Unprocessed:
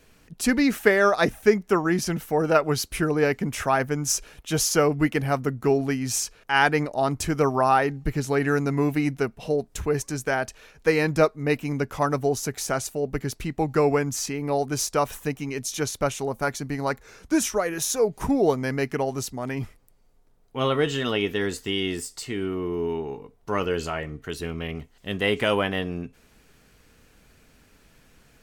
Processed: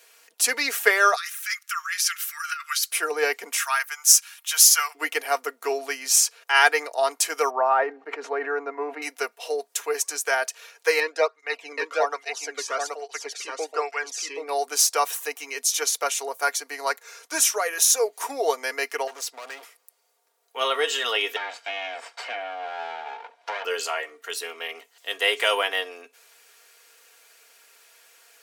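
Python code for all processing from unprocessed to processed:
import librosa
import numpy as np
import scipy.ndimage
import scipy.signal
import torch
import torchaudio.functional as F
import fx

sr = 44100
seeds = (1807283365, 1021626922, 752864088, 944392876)

y = fx.chain(x, sr, fx.steep_highpass(hz=1200.0, slope=72),
    fx.over_compress(threshold_db=-32.0, ratio=-1.0), at=(1.16, 2.91))
y = fx.chain(y, sr, fx.highpass(hz=1100.0, slope=24),
    fx.high_shelf(hz=12000.0, db=7.5), at=(3.57, 4.95))
y = fx.chain(y, sr, fx.lowpass(hz=1200.0, slope=12),
    fx.sustainer(db_per_s=28.0), at=(7.5, 9.02))
y = fx.chain(y, sr, fx.lowpass(hz=4600.0, slope=12),
    fx.echo_single(ms=775, db=-3.5),
    fx.flanger_cancel(hz=1.2, depth_ms=1.5), at=(11.0, 14.49))
y = fx.chain(y, sr, fx.high_shelf(hz=6900.0, db=-10.5),
    fx.overload_stage(gain_db=33.5), at=(19.07, 19.63))
y = fx.chain(y, sr, fx.lower_of_two(delay_ms=1.3),
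    fx.lowpass(hz=2300.0, slope=12),
    fx.band_squash(depth_pct=100), at=(21.36, 23.65))
y = scipy.signal.sosfilt(scipy.signal.bessel(8, 710.0, 'highpass', norm='mag', fs=sr, output='sos'), y)
y = fx.high_shelf(y, sr, hz=4300.0, db=7.0)
y = y + 0.51 * np.pad(y, (int(4.3 * sr / 1000.0), 0))[:len(y)]
y = F.gain(torch.from_numpy(y), 2.5).numpy()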